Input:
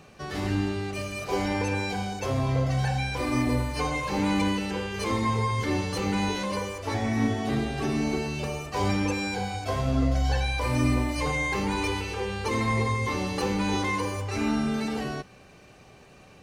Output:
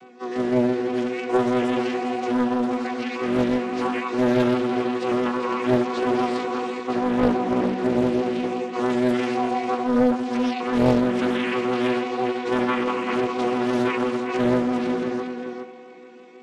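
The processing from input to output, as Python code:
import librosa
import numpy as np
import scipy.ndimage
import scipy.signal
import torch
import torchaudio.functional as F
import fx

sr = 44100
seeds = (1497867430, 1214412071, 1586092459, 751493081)

p1 = fx.chord_vocoder(x, sr, chord='bare fifth', root=59)
p2 = fx.low_shelf(p1, sr, hz=260.0, db=-9.5, at=(3.13, 4.1))
p3 = fx.rider(p2, sr, range_db=4, speed_s=2.0)
p4 = p2 + (p3 * librosa.db_to_amplitude(-2.5))
p5 = fx.vibrato(p4, sr, rate_hz=6.0, depth_cents=36.0)
p6 = fx.doubler(p5, sr, ms=16.0, db=-5.0)
p7 = p6 + 10.0 ** (-6.5 / 20.0) * np.pad(p6, (int(403 * sr / 1000.0), 0))[:len(p6)]
p8 = fx.rev_spring(p7, sr, rt60_s=3.3, pass_ms=(42,), chirp_ms=65, drr_db=8.5)
p9 = fx.doppler_dist(p8, sr, depth_ms=0.92)
y = p9 * librosa.db_to_amplitude(-1.5)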